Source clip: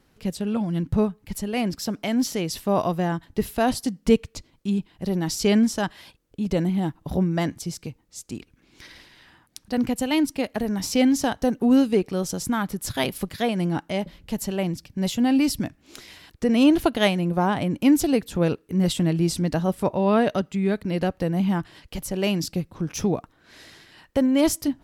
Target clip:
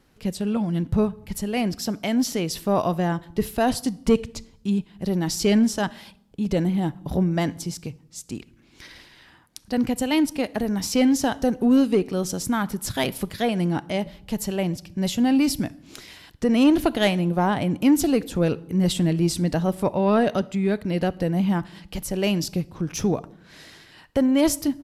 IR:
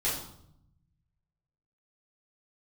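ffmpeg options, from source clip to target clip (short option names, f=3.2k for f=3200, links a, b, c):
-filter_complex "[0:a]aresample=32000,aresample=44100,asplit=2[a][b];[1:a]atrim=start_sample=2205,adelay=28[c];[b][c]afir=irnorm=-1:irlink=0,volume=-28dB[d];[a][d]amix=inputs=2:normalize=0,acontrast=84,volume=-6dB"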